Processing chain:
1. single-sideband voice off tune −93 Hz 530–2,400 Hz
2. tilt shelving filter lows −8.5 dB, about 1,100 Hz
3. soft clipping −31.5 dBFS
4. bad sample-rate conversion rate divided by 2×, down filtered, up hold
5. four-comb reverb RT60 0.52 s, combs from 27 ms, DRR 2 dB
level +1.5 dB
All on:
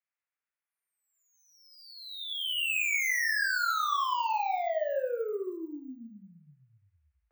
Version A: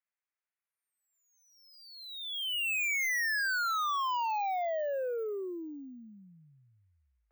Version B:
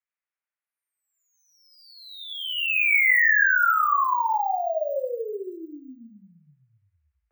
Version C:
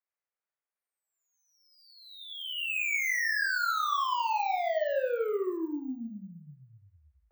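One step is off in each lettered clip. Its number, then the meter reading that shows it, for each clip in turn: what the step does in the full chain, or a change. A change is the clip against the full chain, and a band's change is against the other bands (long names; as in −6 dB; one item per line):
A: 5, change in crest factor −8.5 dB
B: 3, distortion level −8 dB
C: 2, 250 Hz band +6.5 dB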